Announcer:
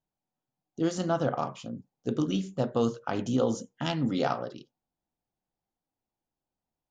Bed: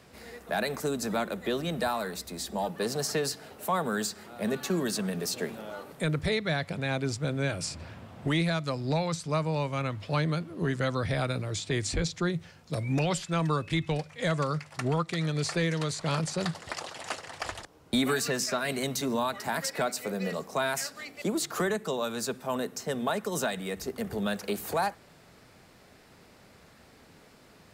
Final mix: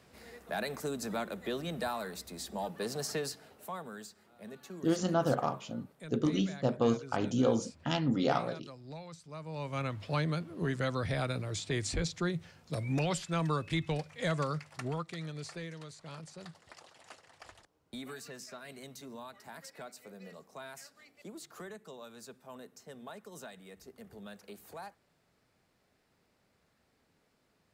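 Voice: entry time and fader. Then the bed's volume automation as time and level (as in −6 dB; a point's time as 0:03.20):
4.05 s, −1.5 dB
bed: 0:03.18 −6 dB
0:04.10 −17.5 dB
0:09.34 −17.5 dB
0:09.77 −4 dB
0:14.44 −4 dB
0:15.93 −17.5 dB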